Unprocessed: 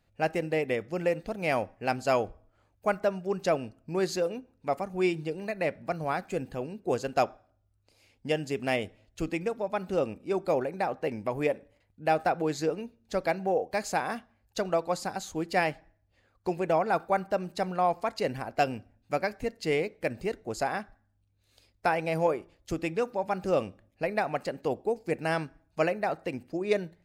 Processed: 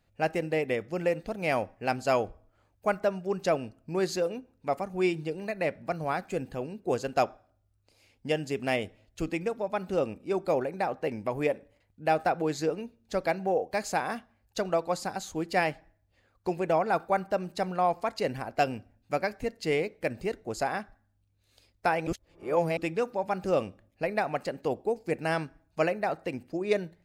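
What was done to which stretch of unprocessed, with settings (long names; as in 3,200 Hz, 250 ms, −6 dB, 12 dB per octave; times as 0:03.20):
0:22.07–0:22.77: reverse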